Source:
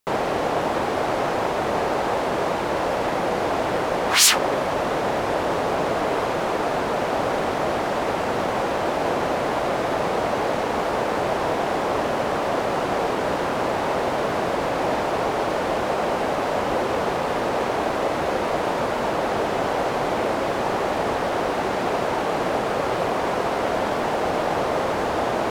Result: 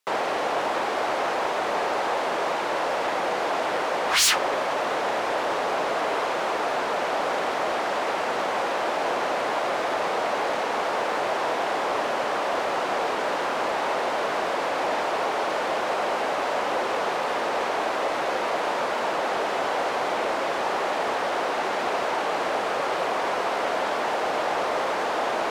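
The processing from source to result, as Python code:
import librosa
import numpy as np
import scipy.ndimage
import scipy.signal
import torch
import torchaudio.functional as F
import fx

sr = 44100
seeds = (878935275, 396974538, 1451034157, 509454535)

y = fx.weighting(x, sr, curve='A')
y = 10.0 ** (-15.0 / 20.0) * np.tanh(y / 10.0 ** (-15.0 / 20.0))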